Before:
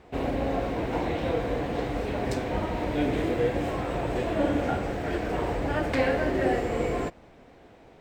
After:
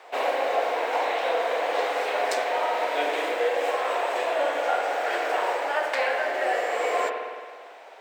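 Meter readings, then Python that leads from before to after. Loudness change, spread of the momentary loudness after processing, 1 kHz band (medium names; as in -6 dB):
+2.5 dB, 2 LU, +7.5 dB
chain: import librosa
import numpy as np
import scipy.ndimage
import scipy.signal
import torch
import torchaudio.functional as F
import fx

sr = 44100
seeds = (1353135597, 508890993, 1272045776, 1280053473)

y = scipy.signal.sosfilt(scipy.signal.butter(4, 570.0, 'highpass', fs=sr, output='sos'), x)
y = fx.rev_spring(y, sr, rt60_s=1.6, pass_ms=(54,), chirp_ms=60, drr_db=4.0)
y = fx.rider(y, sr, range_db=10, speed_s=0.5)
y = y * 10.0 ** (6.0 / 20.0)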